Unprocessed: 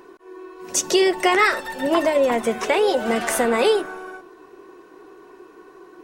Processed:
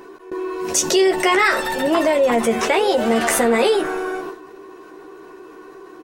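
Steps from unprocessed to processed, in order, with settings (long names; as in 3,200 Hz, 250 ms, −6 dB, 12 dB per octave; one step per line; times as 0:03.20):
noise gate with hold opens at −33 dBFS
double-tracking delay 13 ms −5.5 dB
envelope flattener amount 50%
level −1.5 dB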